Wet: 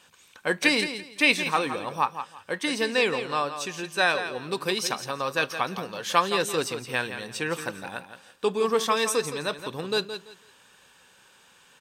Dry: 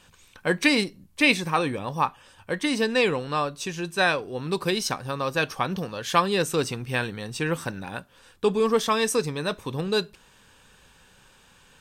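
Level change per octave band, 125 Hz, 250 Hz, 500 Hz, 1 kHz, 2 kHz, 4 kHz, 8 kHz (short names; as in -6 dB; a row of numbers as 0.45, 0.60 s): -8.5, -5.0, -2.0, 0.0, +0.5, +0.5, +0.5 dB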